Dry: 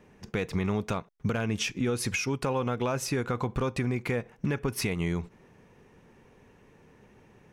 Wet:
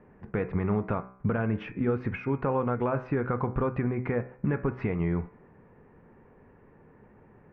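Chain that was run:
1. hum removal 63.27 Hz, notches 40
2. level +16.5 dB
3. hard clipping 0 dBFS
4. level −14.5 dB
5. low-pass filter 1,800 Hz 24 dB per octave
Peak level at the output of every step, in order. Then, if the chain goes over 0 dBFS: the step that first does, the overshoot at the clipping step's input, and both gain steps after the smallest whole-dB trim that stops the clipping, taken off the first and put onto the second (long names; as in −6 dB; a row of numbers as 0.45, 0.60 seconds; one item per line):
−18.0, −1.5, −1.5, −16.0, −16.0 dBFS
no step passes full scale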